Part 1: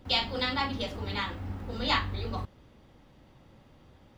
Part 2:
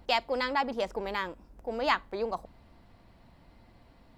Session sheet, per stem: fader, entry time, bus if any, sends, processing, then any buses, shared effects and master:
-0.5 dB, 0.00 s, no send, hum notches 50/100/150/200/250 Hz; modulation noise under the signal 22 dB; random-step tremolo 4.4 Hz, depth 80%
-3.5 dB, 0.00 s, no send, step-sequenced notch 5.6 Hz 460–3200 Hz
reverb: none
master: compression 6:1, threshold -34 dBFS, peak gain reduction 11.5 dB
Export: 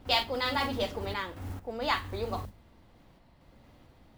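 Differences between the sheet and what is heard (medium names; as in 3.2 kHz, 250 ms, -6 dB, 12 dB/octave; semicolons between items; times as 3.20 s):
stem 2: missing step-sequenced notch 5.6 Hz 460–3200 Hz; master: missing compression 6:1, threshold -34 dBFS, peak gain reduction 11.5 dB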